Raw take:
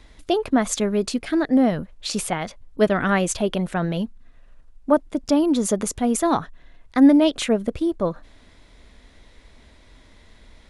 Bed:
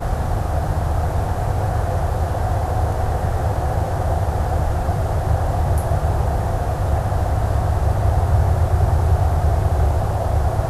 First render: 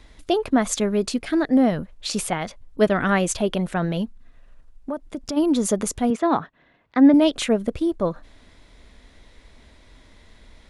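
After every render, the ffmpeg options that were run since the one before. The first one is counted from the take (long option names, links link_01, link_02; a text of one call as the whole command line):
ffmpeg -i in.wav -filter_complex "[0:a]asplit=3[link_01][link_02][link_03];[link_01]afade=type=out:start_time=4.04:duration=0.02[link_04];[link_02]acompressor=threshold=-26dB:ratio=4:attack=3.2:release=140:knee=1:detection=peak,afade=type=in:start_time=4.04:duration=0.02,afade=type=out:start_time=5.36:duration=0.02[link_05];[link_03]afade=type=in:start_time=5.36:duration=0.02[link_06];[link_04][link_05][link_06]amix=inputs=3:normalize=0,asettb=1/sr,asplit=3[link_07][link_08][link_09];[link_07]atrim=end=6.104[link_10];[link_08]atrim=start=6.1:end=7.14,asetpts=PTS-STARTPTS,afade=type=in:duration=0.004:curve=qsin,afade=type=out:start_time=1.036:duration=0.004:curve=qsin,highpass=140,lowpass=3000[link_11];[link_09]atrim=start=7.136[link_12];[link_10][link_11]acrossfade=duration=0.004:curve1=hsin:curve2=qsin[link_13];[link_13][link_12]acrossfade=duration=0.004:curve1=qsin:curve2=hsin" out.wav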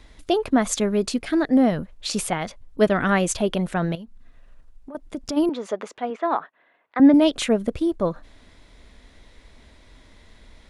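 ffmpeg -i in.wav -filter_complex "[0:a]asettb=1/sr,asplit=3[link_01][link_02][link_03];[link_01]atrim=end=3.954[link_04];[link_02]atrim=start=3.95:end=4.95,asetpts=PTS-STARTPTS,afade=type=in:duration=0.004:curve=qsin,afade=type=out:start_time=0.996:duration=0.004:curve=qsin,acompressor=threshold=-36dB:ratio=6:attack=3.2:release=140:knee=1:detection=peak[link_05];[link_03]atrim=start=4.946[link_06];[link_04][link_05]acrossfade=duration=0.004:curve1=hsin:curve2=qsin[link_07];[link_07][link_06]acrossfade=duration=0.004:curve1=qsin:curve2=hsin,asettb=1/sr,asplit=3[link_08][link_09][link_10];[link_08]atrim=end=5.494[link_11];[link_09]atrim=start=5.49:end=7,asetpts=PTS-STARTPTS,afade=type=in:duration=0.004:curve=qsin,afade=type=out:start_time=1.506:duration=0.004:curve=qsin,highpass=510,lowpass=2700[link_12];[link_10]atrim=start=6.996[link_13];[link_11][link_12]acrossfade=duration=0.004:curve1=hsin:curve2=qsin[link_14];[link_14][link_13]acrossfade=duration=0.004:curve1=qsin:curve2=hsin" out.wav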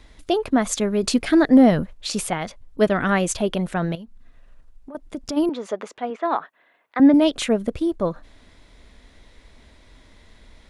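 ffmpeg -i in.wav -filter_complex "[0:a]asettb=1/sr,asplit=3[link_01][link_02][link_03];[link_01]atrim=end=1.034[link_04];[link_02]atrim=start=1.03:end=1.93,asetpts=PTS-STARTPTS,afade=type=in:duration=0.004:curve=qsin,afade=type=out:start_time=0.896:duration=0.004:curve=qsin,acontrast=39[link_05];[link_03]atrim=start=1.926[link_06];[link_04][link_05]acrossfade=duration=0.004:curve1=hsin:curve2=qsin[link_07];[link_07][link_06]acrossfade=duration=0.004:curve1=qsin:curve2=hsin,asettb=1/sr,asplit=3[link_08][link_09][link_10];[link_08]atrim=end=6.254[link_11];[link_09]atrim=start=6.25:end=7.04,asetpts=PTS-STARTPTS,afade=type=in:duration=0.004:curve=qsin,afade=type=out:start_time=0.786:duration=0.004:curve=qsin,highshelf=frequency=3900:gain=8[link_12];[link_10]atrim=start=7.036[link_13];[link_11][link_12]acrossfade=duration=0.004:curve1=hsin:curve2=qsin[link_14];[link_14][link_13]acrossfade=duration=0.004:curve1=qsin:curve2=hsin" out.wav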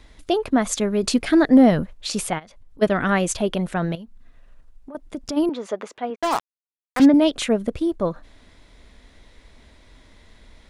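ffmpeg -i in.wav -filter_complex "[0:a]asplit=3[link_01][link_02][link_03];[link_01]afade=type=out:start_time=2.38:duration=0.02[link_04];[link_02]acompressor=threshold=-42dB:ratio=6:attack=3.2:release=140:knee=1:detection=peak,afade=type=in:start_time=2.38:duration=0.02,afade=type=out:start_time=2.81:duration=0.02[link_05];[link_03]afade=type=in:start_time=2.81:duration=0.02[link_06];[link_04][link_05][link_06]amix=inputs=3:normalize=0,asplit=3[link_07][link_08][link_09];[link_07]afade=type=out:start_time=6.14:duration=0.02[link_10];[link_08]acrusher=bits=3:mix=0:aa=0.5,afade=type=in:start_time=6.14:duration=0.02,afade=type=out:start_time=7.04:duration=0.02[link_11];[link_09]afade=type=in:start_time=7.04:duration=0.02[link_12];[link_10][link_11][link_12]amix=inputs=3:normalize=0" out.wav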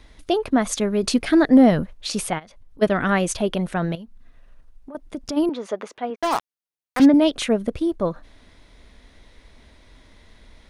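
ffmpeg -i in.wav -af "bandreject=frequency=7400:width=11" out.wav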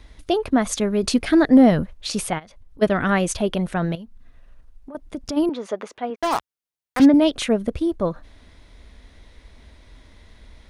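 ffmpeg -i in.wav -af "equalizer=frequency=60:width=0.87:gain=6" out.wav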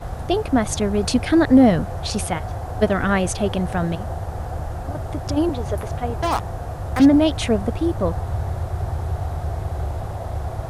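ffmpeg -i in.wav -i bed.wav -filter_complex "[1:a]volume=-8.5dB[link_01];[0:a][link_01]amix=inputs=2:normalize=0" out.wav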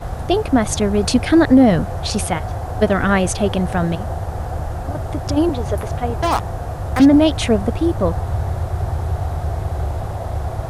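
ffmpeg -i in.wav -af "volume=3.5dB,alimiter=limit=-3dB:level=0:latency=1" out.wav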